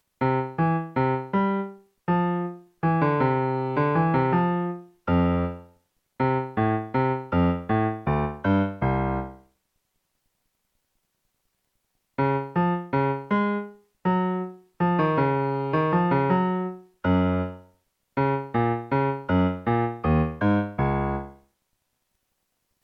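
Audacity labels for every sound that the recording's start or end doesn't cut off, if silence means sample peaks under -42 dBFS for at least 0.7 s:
12.180000	21.340000	sound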